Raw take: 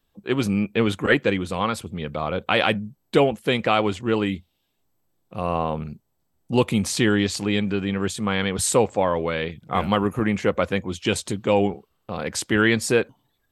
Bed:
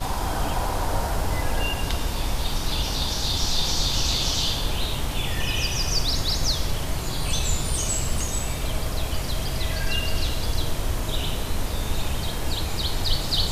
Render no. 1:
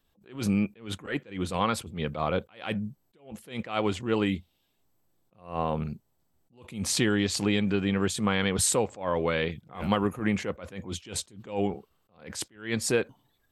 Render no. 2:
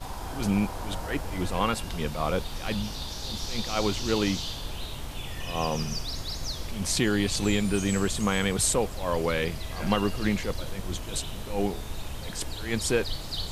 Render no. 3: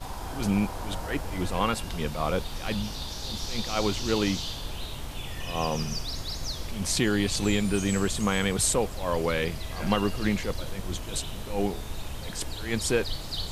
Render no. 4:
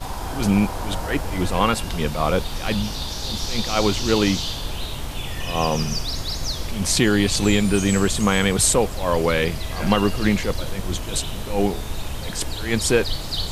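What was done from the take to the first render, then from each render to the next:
compressor, threshold -20 dBFS, peak gain reduction 8 dB; attack slew limiter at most 150 dB/s
add bed -10 dB
nothing audible
gain +7 dB; limiter -3 dBFS, peak gain reduction 1 dB

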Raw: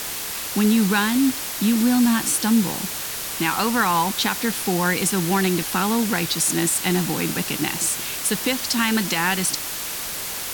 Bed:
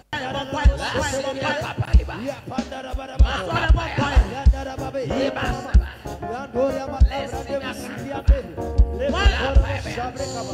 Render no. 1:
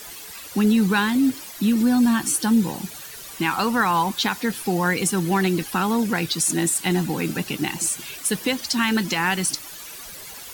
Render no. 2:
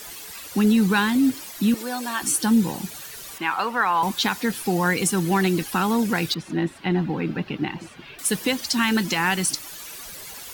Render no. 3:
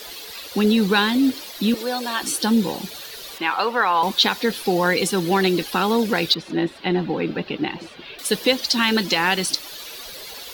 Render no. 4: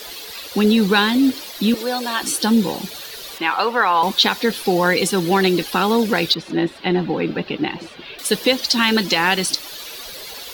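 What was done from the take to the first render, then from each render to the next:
denoiser 13 dB, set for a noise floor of -30 dBFS
1.74–2.22 HPF 390 Hz 24 dB/oct; 3.38–4.03 three-band isolator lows -14 dB, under 420 Hz, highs -12 dB, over 3200 Hz; 6.34–8.19 air absorption 350 m
graphic EQ 125/500/4000/8000 Hz -6/+8/+10/-6 dB
gain +2.5 dB; limiter -3 dBFS, peak gain reduction 2.5 dB

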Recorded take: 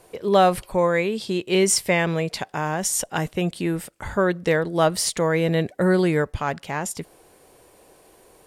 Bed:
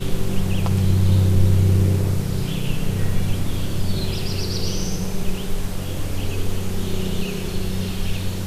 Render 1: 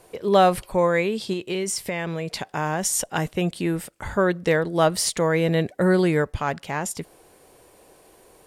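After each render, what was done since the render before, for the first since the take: 1.33–2.49 compressor, threshold -23 dBFS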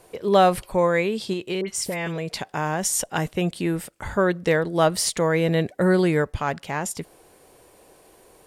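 1.61–2.18 dispersion highs, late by 72 ms, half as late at 2100 Hz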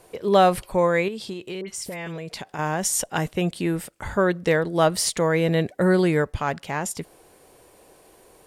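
1.08–2.59 compressor 2:1, threshold -33 dBFS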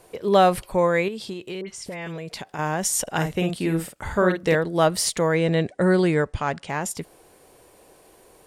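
1.62–2.02 air absorption 54 m; 3.02–4.55 doubler 49 ms -5.5 dB; 5.34–6.7 steep low-pass 10000 Hz 96 dB/oct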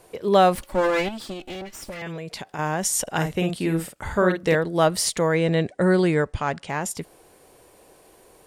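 0.55–2.02 minimum comb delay 3.5 ms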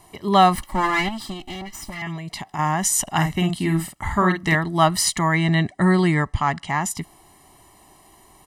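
dynamic EQ 1500 Hz, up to +5 dB, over -40 dBFS, Q 1.9; comb 1 ms, depth 99%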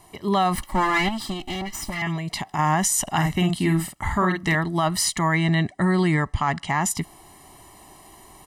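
vocal rider within 5 dB 2 s; limiter -12 dBFS, peak gain reduction 8 dB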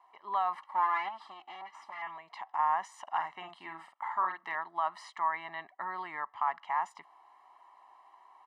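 ladder band-pass 1100 Hz, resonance 55%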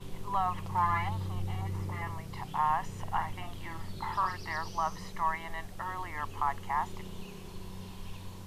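add bed -19.5 dB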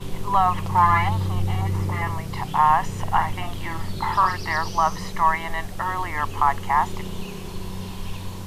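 gain +11.5 dB

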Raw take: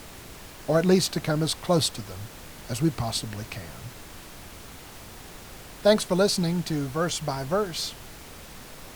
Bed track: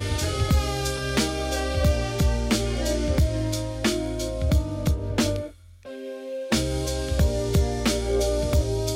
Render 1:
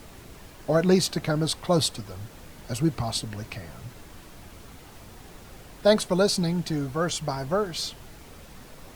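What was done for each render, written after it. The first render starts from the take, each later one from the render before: denoiser 6 dB, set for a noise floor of -44 dBFS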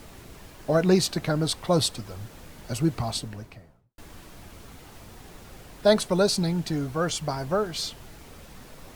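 3.02–3.98 studio fade out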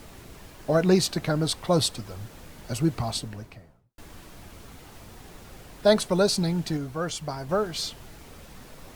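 6.77–7.49 gain -3.5 dB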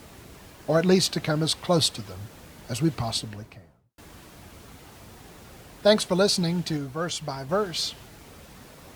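HPF 52 Hz; dynamic EQ 3300 Hz, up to +4 dB, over -44 dBFS, Q 0.81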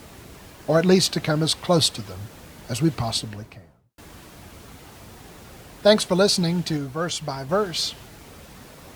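gain +3 dB

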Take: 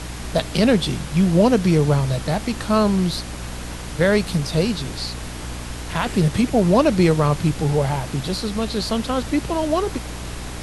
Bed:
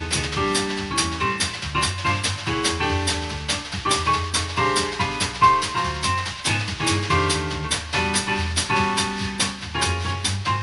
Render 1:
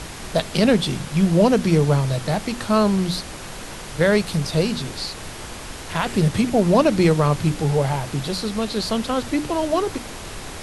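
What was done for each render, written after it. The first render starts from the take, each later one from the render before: notches 60/120/180/240/300 Hz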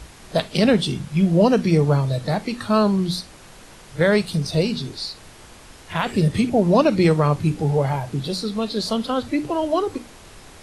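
noise print and reduce 10 dB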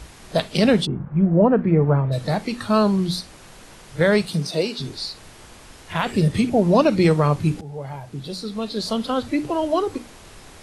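0.85–2.11 LPF 1300 Hz -> 2200 Hz 24 dB/oct; 4.27–4.78 HPF 90 Hz -> 350 Hz 24 dB/oct; 7.61–9.13 fade in linear, from -17.5 dB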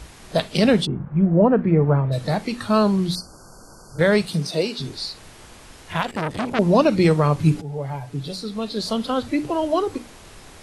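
3.15–3.99 brick-wall FIR band-stop 1600–4300 Hz; 6.02–6.59 core saturation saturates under 1700 Hz; 7.38–8.36 comb 7 ms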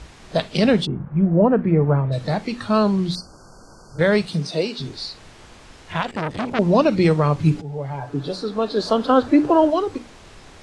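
Bessel low-pass 6500 Hz, order 4; 7.98–9.7 spectral gain 250–1800 Hz +8 dB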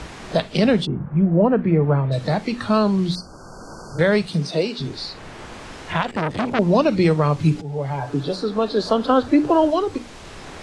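three-band squash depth 40%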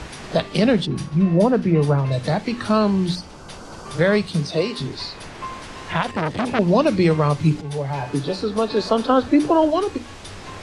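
add bed -17.5 dB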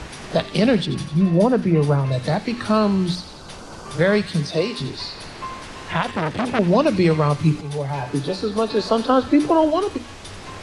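thin delay 88 ms, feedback 67%, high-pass 2000 Hz, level -11 dB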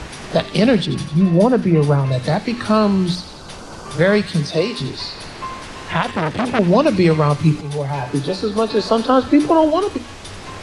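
gain +3 dB; limiter -2 dBFS, peak gain reduction 1 dB

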